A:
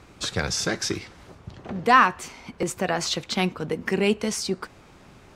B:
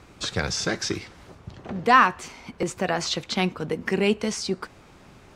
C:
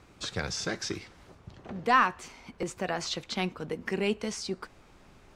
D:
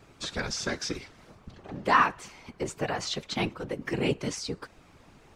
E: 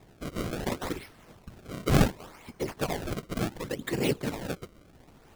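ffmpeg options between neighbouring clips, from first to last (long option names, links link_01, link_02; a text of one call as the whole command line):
ffmpeg -i in.wav -filter_complex "[0:a]acrossover=split=8000[link_01][link_02];[link_02]acompressor=threshold=-52dB:ratio=4:attack=1:release=60[link_03];[link_01][link_03]amix=inputs=2:normalize=0" out.wav
ffmpeg -i in.wav -af "asubboost=boost=2.5:cutoff=55,volume=-6.5dB" out.wav
ffmpeg -i in.wav -af "afftfilt=real='hypot(re,im)*cos(2*PI*random(0))':imag='hypot(re,im)*sin(2*PI*random(1))':win_size=512:overlap=0.75,volume=7dB" out.wav
ffmpeg -i in.wav -af "acrusher=samples=29:mix=1:aa=0.000001:lfo=1:lforange=46.4:lforate=0.69" out.wav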